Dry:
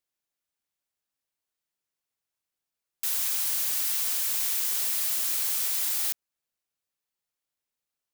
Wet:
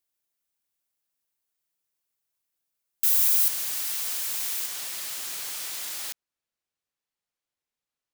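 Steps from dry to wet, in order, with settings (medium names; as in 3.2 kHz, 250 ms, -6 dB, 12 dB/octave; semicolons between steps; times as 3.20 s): treble shelf 8.6 kHz +8.5 dB, from 3.48 s -3 dB, from 4.66 s -9.5 dB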